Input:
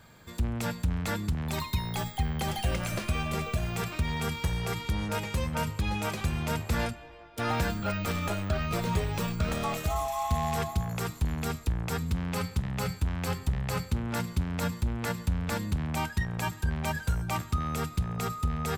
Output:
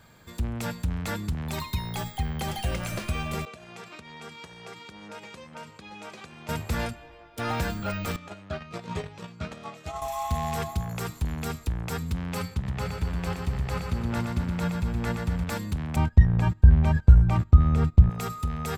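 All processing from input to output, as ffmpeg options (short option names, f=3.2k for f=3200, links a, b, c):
-filter_complex "[0:a]asettb=1/sr,asplit=3[a][b][c];[a]atrim=end=3.454[d];[b]atrim=start=3.45:end=6.49,asetpts=PTS-STARTPTS,afade=t=in:d=0.004:c=qsin,afade=t=out:st=3.036:d=0.004:c=qsin,acompressor=threshold=-34dB:ratio=5:attack=3.2:release=140:knee=1:detection=peak,agate=range=-33dB:threshold=-36dB:ratio=3:release=100:detection=peak,highpass=240,lowpass=7.2k[e];[c]atrim=start=6.486[f];[d][e]acrossfade=d=0.004:c1=hsin:c2=qsin[g];[g][f]acrossfade=d=0.004:c1=qsin:c2=hsin,asettb=1/sr,asplit=3[h][i][j];[h]atrim=end=8.164[k];[i]atrim=start=8.16:end=10.02,asetpts=PTS-STARTPTS,afade=t=in:d=0.004:c=qsin,afade=t=out:st=1.856:d=0.004:c=qsin,agate=range=-12dB:threshold=-29dB:ratio=16:release=100:detection=peak,highpass=120,lowpass=6.6k[l];[j]atrim=start=10.016[m];[k][l]acrossfade=d=0.004:c1=hsin:c2=qsin[n];[n][m]acrossfade=d=0.004:c1=qsin:c2=hsin,asettb=1/sr,asplit=3[o][p][q];[o]atrim=end=12.544[r];[p]atrim=start=12.54:end=15.44,asetpts=PTS-STARTPTS,afade=t=in:d=0.004:c=qsin,afade=t=out:st=2.896:d=0.004:c=qsin,lowpass=f=3.9k:p=1,aecho=1:1:120|240|360|480|600|720|840:0.562|0.304|0.164|0.0885|0.0478|0.0258|0.0139,atrim=end_sample=127890[s];[q]atrim=start=15.436[t];[r][s]acrossfade=d=0.004:c1=hsin:c2=qsin[u];[u][t]acrossfade=d=0.004:c1=qsin:c2=hsin,asettb=1/sr,asplit=3[v][w][x];[v]atrim=end=15.964[y];[w]atrim=start=15.96:end=18.1,asetpts=PTS-STARTPTS,afade=t=in:d=0.004:c=qsin,afade=t=out:st=2.136:d=0.004:c=qsin,aemphasis=mode=reproduction:type=riaa,agate=range=-16dB:threshold=-27dB:ratio=16:release=100:detection=peak[z];[x]atrim=start=18.096[aa];[y][z]acrossfade=d=0.004:c1=hsin:c2=qsin[ab];[ab][aa]acrossfade=d=0.004:c1=qsin:c2=hsin"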